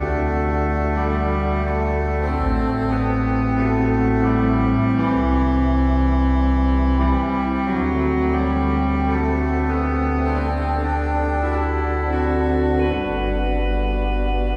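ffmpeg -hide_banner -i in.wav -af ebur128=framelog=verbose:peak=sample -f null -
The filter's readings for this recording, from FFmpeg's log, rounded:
Integrated loudness:
  I:         -20.1 LUFS
  Threshold: -30.1 LUFS
Loudness range:
  LRA:         2.6 LU
  Threshold: -39.9 LUFS
  LRA low:   -21.0 LUFS
  LRA high:  -18.5 LUFS
Sample peak:
  Peak:       -6.5 dBFS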